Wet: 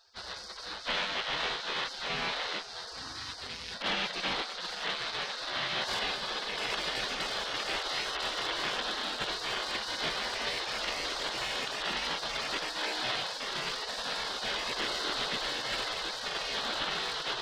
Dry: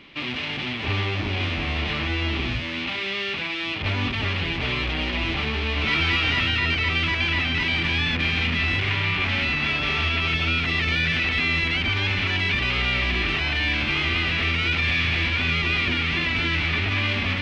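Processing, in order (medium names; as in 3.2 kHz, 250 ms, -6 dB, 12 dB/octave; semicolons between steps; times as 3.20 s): in parallel at -6 dB: saturation -21.5 dBFS, distortion -13 dB; 3.71–4.36 s: on the sum: comb 2.4 ms, depth 52%; 5.99–6.58 s: treble shelf 5.4 kHz -10 dB; spectral gate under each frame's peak -20 dB weak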